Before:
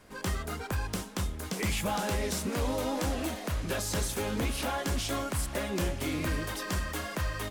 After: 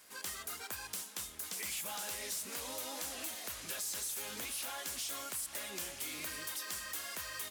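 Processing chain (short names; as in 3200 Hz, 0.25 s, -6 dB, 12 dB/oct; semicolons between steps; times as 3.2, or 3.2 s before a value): tilt +4.5 dB/oct; soft clip -21.5 dBFS, distortion -13 dB; compressor 2.5:1, threshold -33 dBFS, peak gain reduction 6 dB; gain -7 dB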